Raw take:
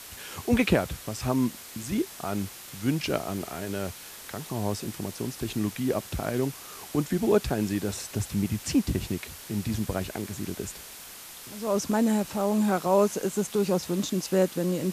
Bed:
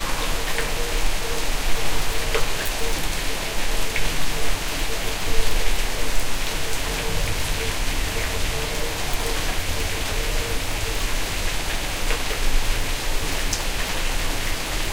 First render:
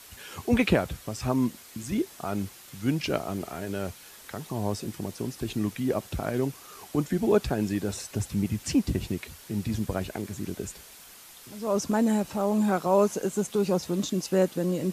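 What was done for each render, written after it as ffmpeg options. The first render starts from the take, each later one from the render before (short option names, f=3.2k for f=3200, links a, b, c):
-af "afftdn=nr=6:nf=-44"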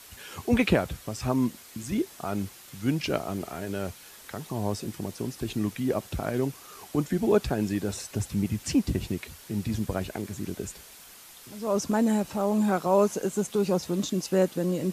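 -af anull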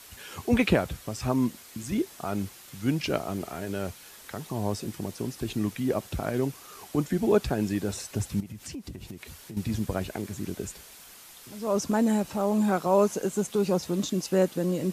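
-filter_complex "[0:a]asettb=1/sr,asplit=3[a][b][c];[a]atrim=end=8.404[d];[b]atrim=start=8.4:end=9.57,asetpts=PTS-STARTPTS,afade=t=in:d=0.004:c=qsin,afade=t=out:st=1.166:d=0.004:c=qsin,acompressor=threshold=-37dB:ratio=5:attack=3.2:release=140:knee=1:detection=peak[e];[c]atrim=start=9.566[f];[d][e]acrossfade=d=0.004:c1=hsin:c2=qsin[g];[g][f]acrossfade=d=0.004:c1=qsin:c2=hsin"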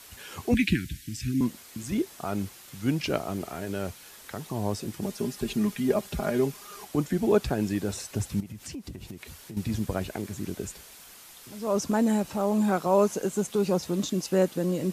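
-filter_complex "[0:a]asettb=1/sr,asplit=3[a][b][c];[a]atrim=end=0.544[d];[b]atrim=start=0.54:end=1.41,asetpts=PTS-STARTPTS,afade=t=in:d=0.004:c=qsin,afade=t=out:st=0.866:d=0.004:c=qsin,asuperstop=centerf=740:order=12:qfactor=0.56[e];[c]atrim=start=1.406[f];[d][e]acrossfade=d=0.004:c1=hsin:c2=qsin[g];[g][f]acrossfade=d=0.004:c1=qsin:c2=hsin,asettb=1/sr,asplit=3[h][i][j];[h]atrim=end=5.024[k];[i]atrim=start=5.02:end=6.85,asetpts=PTS-STARTPTS,afade=t=in:d=0.004:c=qsin,afade=t=out:st=1.826:d=0.004:c=qsin,aecho=1:1:4.9:0.75,atrim=end_sample=80703[l];[j]atrim=start=6.846[m];[k][l]acrossfade=d=0.004:c1=hsin:c2=qsin[n];[n][m]acrossfade=d=0.004:c1=qsin:c2=hsin"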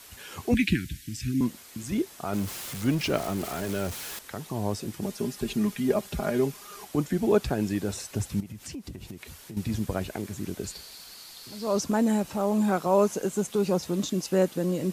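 -filter_complex "[0:a]asettb=1/sr,asplit=3[a][b][c];[a]atrim=end=2.334[d];[b]atrim=start=2.33:end=4.19,asetpts=PTS-STARTPTS,afade=t=in:d=0.004:c=qsin,afade=t=out:st=1.856:d=0.004:c=qsin,aeval=exprs='val(0)+0.5*0.02*sgn(val(0))':c=same[e];[c]atrim=start=4.186[f];[d][e]acrossfade=d=0.004:c1=hsin:c2=qsin[g];[g][f]acrossfade=d=0.004:c1=qsin:c2=hsin,asettb=1/sr,asplit=3[h][i][j];[h]atrim=end=10.644[k];[i]atrim=start=10.64:end=11.82,asetpts=PTS-STARTPTS,afade=t=in:d=0.004:c=qsin,afade=t=out:st=1.176:d=0.004:c=qsin,equalizer=f=4.4k:w=4:g=14[l];[j]atrim=start=11.816[m];[k][l]acrossfade=d=0.004:c1=hsin:c2=qsin[n];[n][m]acrossfade=d=0.004:c1=qsin:c2=hsin"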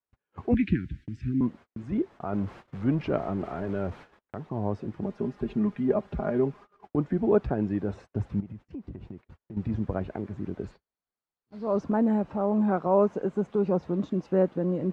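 -af "lowpass=1.3k,agate=range=-39dB:threshold=-44dB:ratio=16:detection=peak"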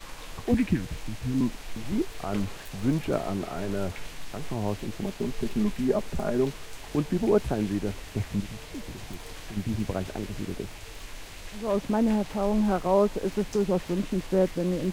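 -filter_complex "[1:a]volume=-17.5dB[a];[0:a][a]amix=inputs=2:normalize=0"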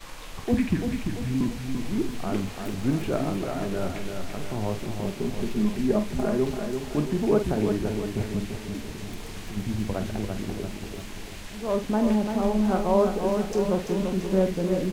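-filter_complex "[0:a]asplit=2[a][b];[b]adelay=47,volume=-9.5dB[c];[a][c]amix=inputs=2:normalize=0,aecho=1:1:340|680|1020|1360|1700|2040:0.501|0.261|0.136|0.0705|0.0366|0.0191"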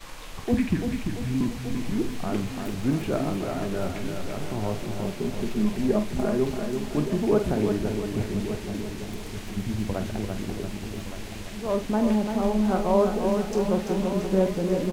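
-af "aecho=1:1:1168:0.266"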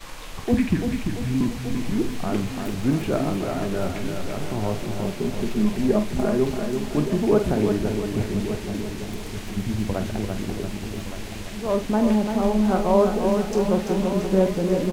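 -af "volume=3dB"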